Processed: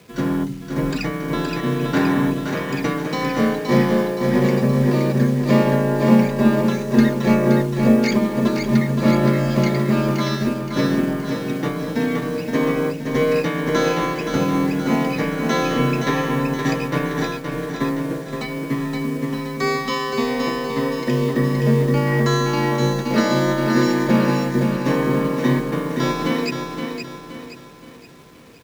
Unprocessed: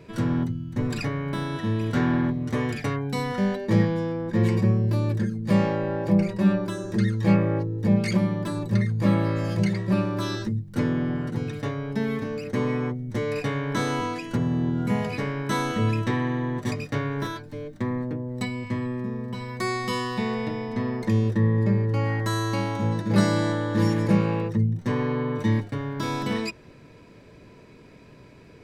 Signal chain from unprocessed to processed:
dynamic equaliser 120 Hz, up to −6 dB, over −36 dBFS, Q 1.2
in parallel at +2.5 dB: brickwall limiter −19 dBFS, peak gain reduction 9.5 dB
on the sum: downsampling to 16,000 Hz
bit reduction 7 bits
frequency shifter +28 Hz
repeating echo 521 ms, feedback 54%, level −4 dB
expander for the loud parts 1.5 to 1, over −35 dBFS
level +2.5 dB

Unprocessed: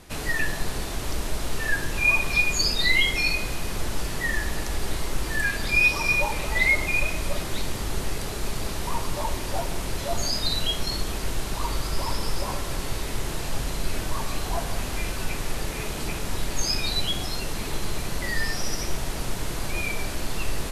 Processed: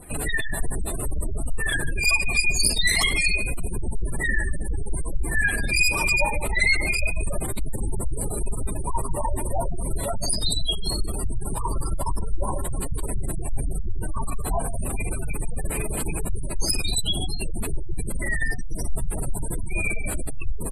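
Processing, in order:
wavefolder on the positive side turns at −21.5 dBFS
high shelf with overshoot 7,300 Hz +6 dB, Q 3
slap from a distant wall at 24 metres, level −12 dB
gate on every frequency bin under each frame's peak −20 dB strong
level +4 dB

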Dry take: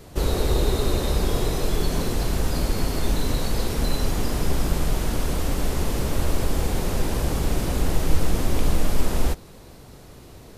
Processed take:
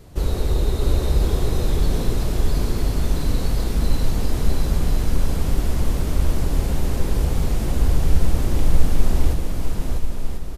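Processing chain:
low-shelf EQ 180 Hz +8 dB
on a send: bouncing-ball delay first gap 650 ms, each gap 0.6×, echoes 5
on the sum: level −5 dB

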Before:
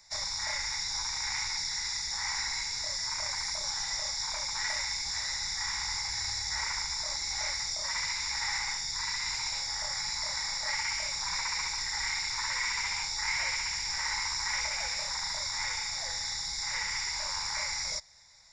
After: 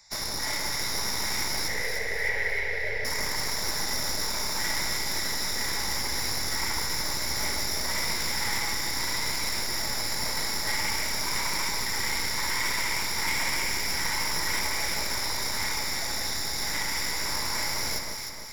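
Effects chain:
stylus tracing distortion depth 0.07 ms
0:01.68–0:03.05: drawn EQ curve 120 Hz 0 dB, 300 Hz −22 dB, 440 Hz +13 dB, 1,200 Hz −14 dB, 1,900 Hz +10 dB, 7,400 Hz −27 dB
delay that swaps between a low-pass and a high-pass 153 ms, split 1,300 Hz, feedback 72%, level −2.5 dB
level +2 dB

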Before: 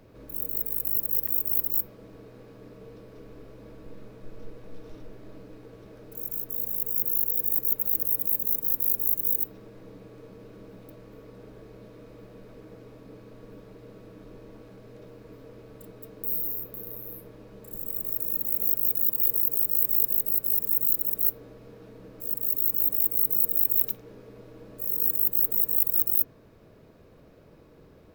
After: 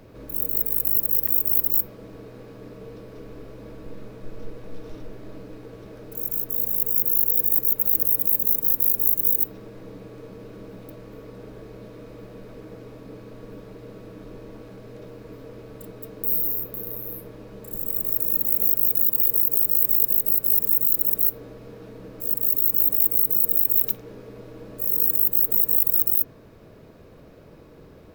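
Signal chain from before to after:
brickwall limiter −12 dBFS, peak gain reduction 5.5 dB
level +6 dB

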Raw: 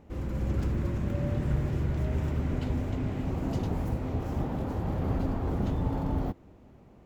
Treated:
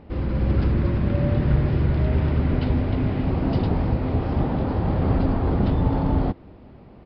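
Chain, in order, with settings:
downsampling to 11,025 Hz
level +8.5 dB

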